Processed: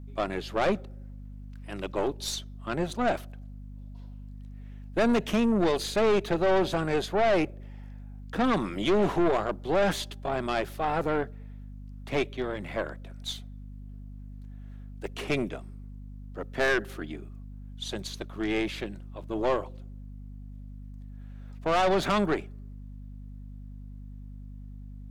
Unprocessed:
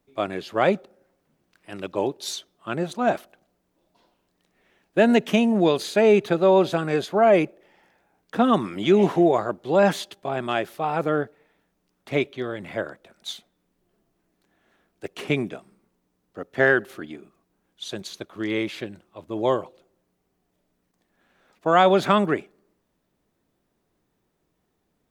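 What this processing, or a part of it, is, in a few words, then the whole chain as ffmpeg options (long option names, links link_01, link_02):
valve amplifier with mains hum: -af "aeval=exprs='(tanh(10*val(0)+0.4)-tanh(0.4))/10':channel_layout=same,aeval=exprs='val(0)+0.00891*(sin(2*PI*50*n/s)+sin(2*PI*2*50*n/s)/2+sin(2*PI*3*50*n/s)/3+sin(2*PI*4*50*n/s)/4+sin(2*PI*5*50*n/s)/5)':channel_layout=same"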